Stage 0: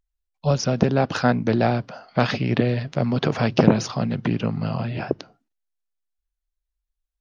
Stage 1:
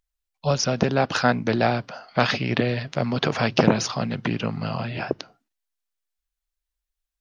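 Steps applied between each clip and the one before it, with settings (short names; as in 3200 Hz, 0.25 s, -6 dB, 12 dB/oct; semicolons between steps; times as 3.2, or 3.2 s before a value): tilt shelf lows -4 dB, about 660 Hz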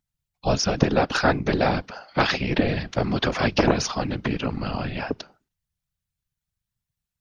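whisperiser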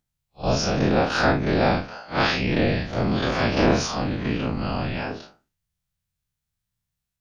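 time blur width 98 ms; gain +4 dB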